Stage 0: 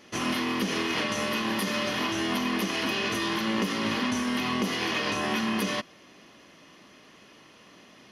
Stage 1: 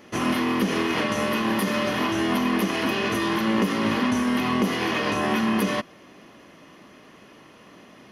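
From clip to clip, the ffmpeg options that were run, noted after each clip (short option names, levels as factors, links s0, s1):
-af "equalizer=f=4800:w=0.56:g=-8,volume=2"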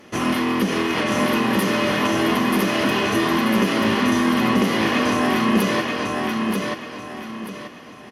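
-af "aecho=1:1:934|1868|2802|3736:0.708|0.234|0.0771|0.0254,volume=1.33" -ar 44100 -c:a sbc -b:a 128k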